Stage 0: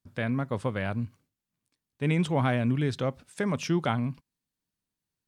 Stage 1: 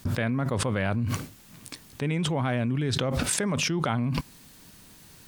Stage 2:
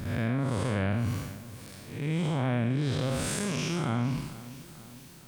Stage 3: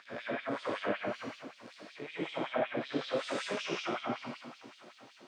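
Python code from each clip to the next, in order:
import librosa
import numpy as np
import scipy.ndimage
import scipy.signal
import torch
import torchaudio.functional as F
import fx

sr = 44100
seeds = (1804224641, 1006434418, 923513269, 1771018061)

y1 = fx.env_flatten(x, sr, amount_pct=100)
y1 = y1 * librosa.db_to_amplitude(-4.0)
y2 = fx.spec_blur(y1, sr, span_ms=214.0)
y2 = fx.echo_feedback(y2, sr, ms=457, feedback_pct=55, wet_db=-17)
y3 = fx.air_absorb(y2, sr, metres=150.0)
y3 = fx.rev_freeverb(y3, sr, rt60_s=0.75, hf_ratio=0.8, predelay_ms=55, drr_db=-5.0)
y3 = fx.filter_lfo_highpass(y3, sr, shape='sine', hz=5.3, low_hz=320.0, high_hz=3600.0, q=1.7)
y3 = y3 * librosa.db_to_amplitude(-6.5)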